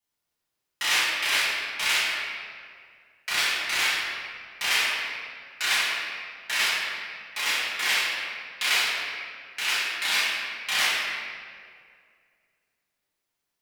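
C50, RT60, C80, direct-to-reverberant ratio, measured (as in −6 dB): −2.0 dB, 2.1 s, 0.0 dB, −11.0 dB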